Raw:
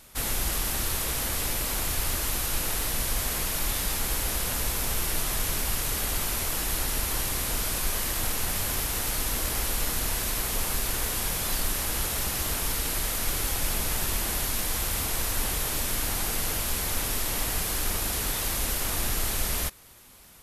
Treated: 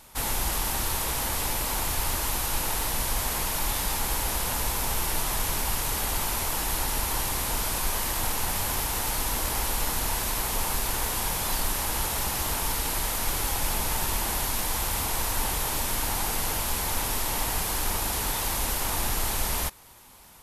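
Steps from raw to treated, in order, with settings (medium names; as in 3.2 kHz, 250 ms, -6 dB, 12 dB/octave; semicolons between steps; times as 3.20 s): peaking EQ 900 Hz +8.5 dB 0.5 oct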